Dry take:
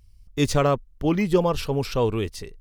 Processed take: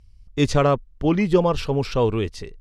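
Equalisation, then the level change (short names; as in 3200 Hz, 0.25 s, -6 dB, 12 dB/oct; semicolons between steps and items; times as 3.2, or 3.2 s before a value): air absorption 62 m; +2.5 dB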